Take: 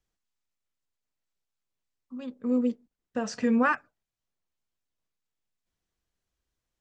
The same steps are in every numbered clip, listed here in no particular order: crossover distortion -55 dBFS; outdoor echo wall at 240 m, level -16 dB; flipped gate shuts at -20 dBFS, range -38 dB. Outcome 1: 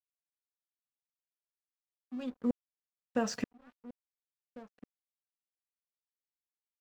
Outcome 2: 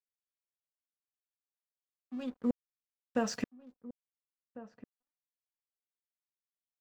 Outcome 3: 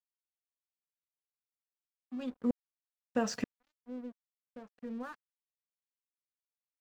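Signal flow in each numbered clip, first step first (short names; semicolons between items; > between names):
flipped gate > outdoor echo > crossover distortion; flipped gate > crossover distortion > outdoor echo; outdoor echo > flipped gate > crossover distortion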